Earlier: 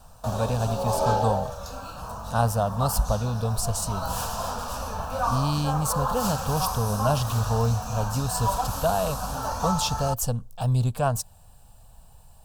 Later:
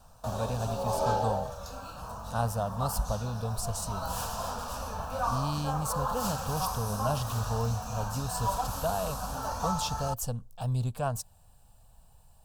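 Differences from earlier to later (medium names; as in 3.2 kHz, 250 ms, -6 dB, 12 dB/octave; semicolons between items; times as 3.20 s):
speech -7.0 dB; background -4.5 dB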